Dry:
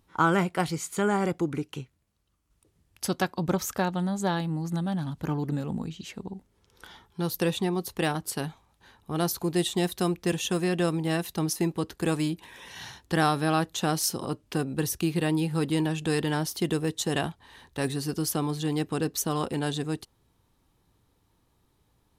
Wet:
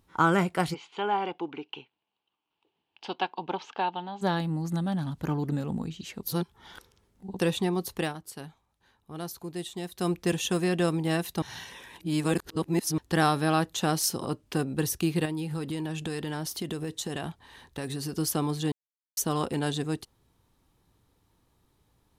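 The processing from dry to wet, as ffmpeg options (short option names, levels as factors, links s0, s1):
-filter_complex "[0:a]asplit=3[s0][s1][s2];[s0]afade=t=out:st=0.73:d=0.02[s3];[s1]highpass=440,equalizer=f=570:t=q:w=4:g=-8,equalizer=f=860:t=q:w=4:g=8,equalizer=f=1300:t=q:w=4:g=-7,equalizer=f=1900:t=q:w=4:g=-8,equalizer=f=2900:t=q:w=4:g=8,lowpass=f=3600:w=0.5412,lowpass=f=3600:w=1.3066,afade=t=in:st=0.73:d=0.02,afade=t=out:st=4.21:d=0.02[s4];[s2]afade=t=in:st=4.21:d=0.02[s5];[s3][s4][s5]amix=inputs=3:normalize=0,asettb=1/sr,asplit=3[s6][s7][s8];[s6]atrim=end=15.254[s9];[s7]atrim=start=15.25:end=18.18,asetpts=PTS-STARTPTS,afade=t=in:d=0.004:c=qsin,afade=t=out:st=2.926:d=0.004:c=qsin,acompressor=threshold=0.0355:ratio=6:attack=3.2:release=140:knee=1:detection=peak[s10];[s8]atrim=start=18.176[s11];[s9][s10]acrossfade=d=0.004:c1=hsin:c2=qsin[s12];[s12][s11]acrossfade=d=0.004:c1=qsin:c2=hsin,asplit=9[s13][s14][s15][s16][s17][s18][s19][s20][s21];[s13]atrim=end=6.232[s22];[s14]atrim=start=6.228:end=7.392,asetpts=PTS-STARTPTS,areverse[s23];[s15]atrim=start=7.388:end=8.14,asetpts=PTS-STARTPTS,afade=t=out:st=0.572:d=0.18:silence=0.316228[s24];[s16]atrim=start=8.14:end=9.93,asetpts=PTS-STARTPTS,volume=0.316[s25];[s17]atrim=start=9.93:end=11.422,asetpts=PTS-STARTPTS,afade=t=in:d=0.18:silence=0.316228[s26];[s18]atrim=start=11.418:end=12.982,asetpts=PTS-STARTPTS,areverse[s27];[s19]atrim=start=12.978:end=18.72,asetpts=PTS-STARTPTS,afade=t=out:st=5.738:d=0.004:c=hsin[s28];[s20]atrim=start=18.72:end=19.17,asetpts=PTS-STARTPTS,volume=0[s29];[s21]atrim=start=19.17,asetpts=PTS-STARTPTS,afade=t=in:d=0.004:c=hsin[s30];[s22][s23]acrossfade=d=0.004:c1=hsin:c2=hsin[s31];[s24][s25][s26]concat=n=3:v=0:a=1[s32];[s31][s32]acrossfade=d=0.004:c1=hsin:c2=hsin[s33];[s33][s27]acrossfade=d=0.004:c1=hsin:c2=hsin[s34];[s28][s29][s30]concat=n=3:v=0:a=1[s35];[s34][s35]acrossfade=d=0.004:c1=hsin:c2=hsin"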